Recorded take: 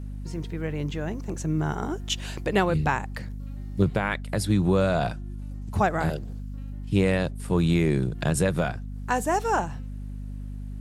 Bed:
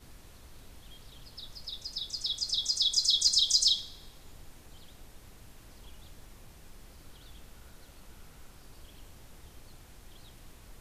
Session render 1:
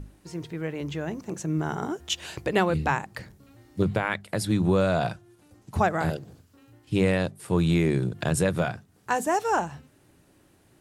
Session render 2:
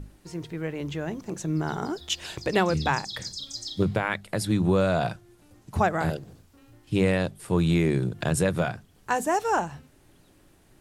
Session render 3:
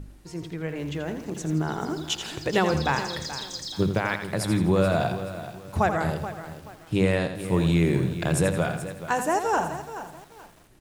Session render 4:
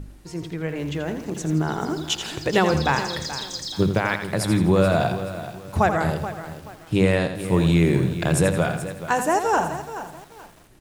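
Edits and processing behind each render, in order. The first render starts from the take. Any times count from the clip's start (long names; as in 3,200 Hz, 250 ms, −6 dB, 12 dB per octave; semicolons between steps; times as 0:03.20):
mains-hum notches 50/100/150/200/250 Hz
mix in bed −12 dB
repeating echo 83 ms, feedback 43%, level −9 dB; feedback echo at a low word length 429 ms, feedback 35%, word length 7 bits, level −12 dB
level +3.5 dB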